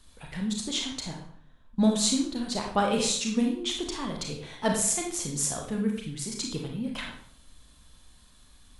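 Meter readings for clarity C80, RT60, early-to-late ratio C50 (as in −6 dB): 8.5 dB, 0.55 s, 5.0 dB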